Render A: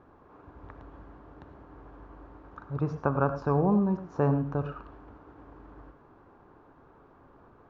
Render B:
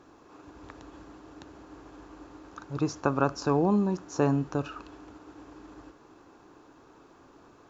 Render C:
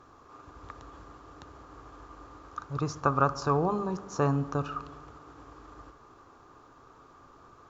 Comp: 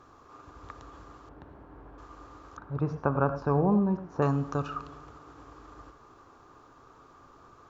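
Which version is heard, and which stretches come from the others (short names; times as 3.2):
C
1.29–1.98 from A
2.57–4.22 from A
not used: B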